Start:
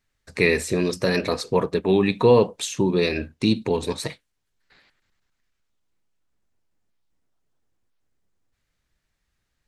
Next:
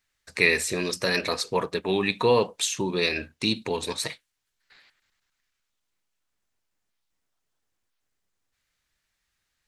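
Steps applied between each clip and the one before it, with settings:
tilt shelving filter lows −6 dB, about 730 Hz
level −3 dB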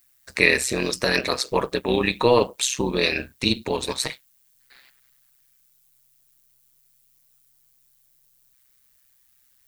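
background noise violet −65 dBFS
amplitude modulation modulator 130 Hz, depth 60%
level +6.5 dB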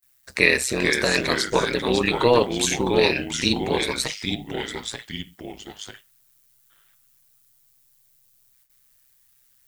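delay with pitch and tempo change per echo 388 ms, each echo −2 semitones, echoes 2, each echo −6 dB
noise gate with hold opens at −49 dBFS

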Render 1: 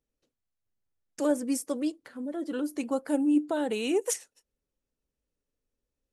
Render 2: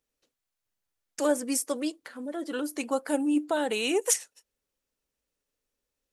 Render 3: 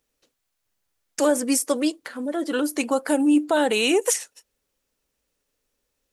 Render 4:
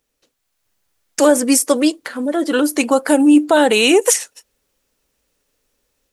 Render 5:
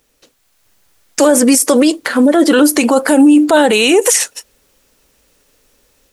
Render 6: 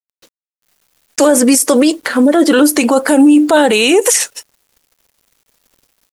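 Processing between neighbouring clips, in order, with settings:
low-shelf EQ 440 Hz −12 dB; level +6.5 dB
brickwall limiter −19 dBFS, peak gain reduction 7.5 dB; level +8 dB
automatic gain control gain up to 5 dB; level +3 dB
boost into a limiter +14 dB; level −1 dB
bit reduction 8 bits

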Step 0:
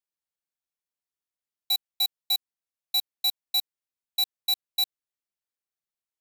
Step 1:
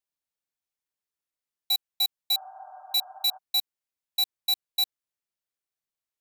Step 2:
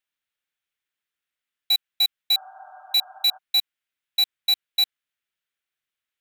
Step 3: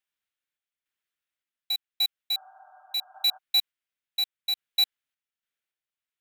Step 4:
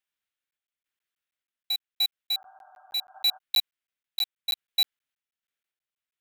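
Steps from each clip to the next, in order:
healed spectral selection 0:02.36–0:03.35, 590–1,700 Hz before
flat-topped bell 2,200 Hz +10 dB
sample-and-hold tremolo; level −2 dB
regular buffer underruns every 0.16 s, samples 512, zero, from 0:00.51

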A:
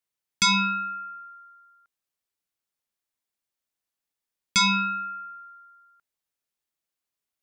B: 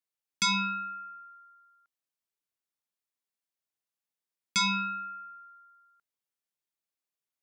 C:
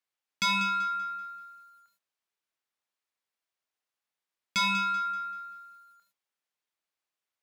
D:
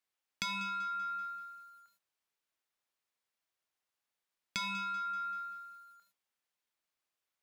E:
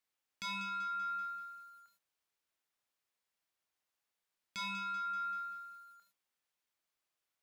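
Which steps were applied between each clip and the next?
high-pass filter 100 Hz; level −6 dB
mid-hump overdrive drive 12 dB, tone 2,800 Hz, clips at −18 dBFS; feedback echo at a low word length 192 ms, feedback 35%, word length 10 bits, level −12 dB
downward compressor 10 to 1, threshold −35 dBFS, peak gain reduction 11.5 dB
brickwall limiter −34 dBFS, peak gain reduction 11 dB

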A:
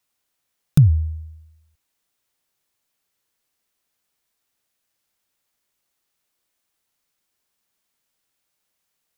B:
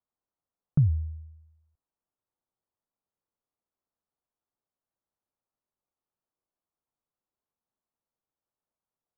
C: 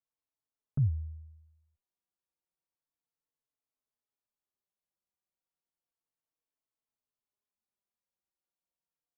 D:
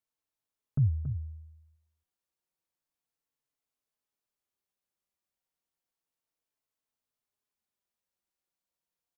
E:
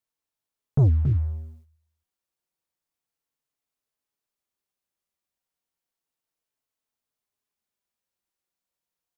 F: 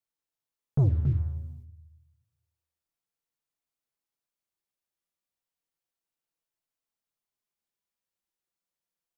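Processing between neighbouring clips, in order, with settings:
low-pass filter 1,200 Hz 24 dB per octave; level −9 dB
barber-pole flanger 4 ms −0.32 Hz; level −4 dB
single-tap delay 278 ms −9.5 dB; level +2 dB
leveller curve on the samples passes 2; level +5.5 dB
rectangular room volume 2,000 cubic metres, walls furnished, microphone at 0.75 metres; level −4.5 dB

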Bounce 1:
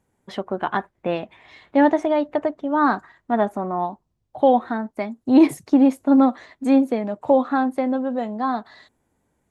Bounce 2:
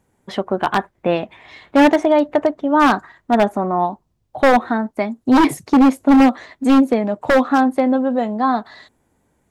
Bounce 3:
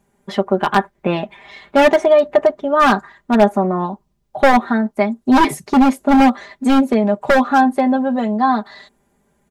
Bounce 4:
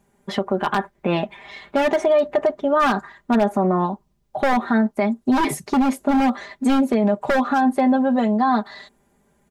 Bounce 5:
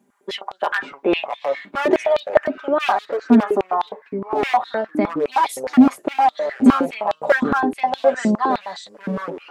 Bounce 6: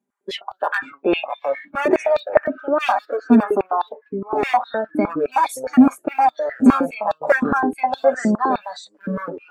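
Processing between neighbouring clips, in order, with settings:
wave folding −12 dBFS; level +6 dB
comb filter 5 ms, depth 76%
brickwall limiter −10 dBFS, peak gain reduction 8.5 dB
delay with pitch and tempo change per echo 395 ms, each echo −6 semitones, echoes 3, each echo −6 dB; high-pass on a step sequencer 9.7 Hz 250–3,700 Hz; level −3 dB
noise reduction from a noise print of the clip's start 17 dB

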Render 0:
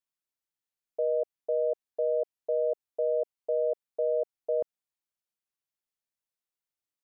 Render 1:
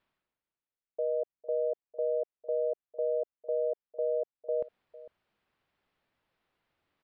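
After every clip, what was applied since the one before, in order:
reversed playback
upward compression, threshold −48 dBFS
reversed playback
high-frequency loss of the air 400 metres
single-tap delay 452 ms −18 dB
level −2 dB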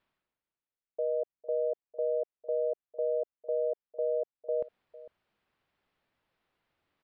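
no processing that can be heard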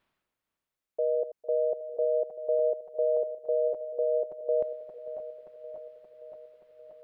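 feedback delay that plays each chunk backwards 288 ms, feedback 79%, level −13 dB
level +3.5 dB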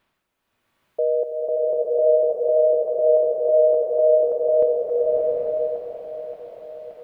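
slow-attack reverb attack 840 ms, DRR −6.5 dB
level +6.5 dB

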